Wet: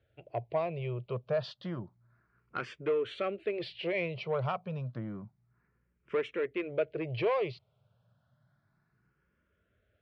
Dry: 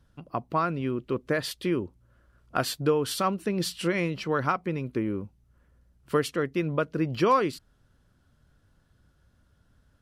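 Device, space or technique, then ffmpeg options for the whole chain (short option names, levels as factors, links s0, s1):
barber-pole phaser into a guitar amplifier: -filter_complex "[0:a]asplit=2[s0][s1];[s1]afreqshift=0.3[s2];[s0][s2]amix=inputs=2:normalize=1,asoftclip=type=tanh:threshold=0.0794,highpass=100,equalizer=f=120:t=q:w=4:g=9,equalizer=f=270:t=q:w=4:g=-10,equalizer=f=420:t=q:w=4:g=5,equalizer=f=630:t=q:w=4:g=9,equalizer=f=2300:t=q:w=4:g=7,lowpass=f=4000:w=0.5412,lowpass=f=4000:w=1.3066,volume=0.596"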